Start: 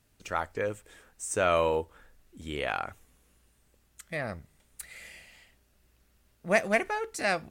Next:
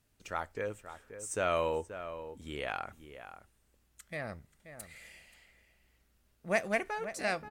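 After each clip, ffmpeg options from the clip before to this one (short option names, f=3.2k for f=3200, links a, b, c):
-filter_complex "[0:a]asplit=2[a][b];[b]adelay=530.6,volume=-11dB,highshelf=f=4k:g=-11.9[c];[a][c]amix=inputs=2:normalize=0,volume=-5.5dB"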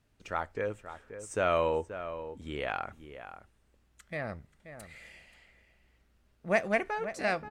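-af "aemphasis=mode=reproduction:type=50kf,volume=3.5dB"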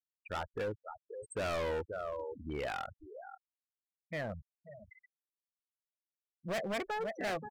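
-af "afftfilt=real='re*gte(hypot(re,im),0.0224)':imag='im*gte(hypot(re,im),0.0224)':win_size=1024:overlap=0.75,volume=32.5dB,asoftclip=hard,volume=-32.5dB"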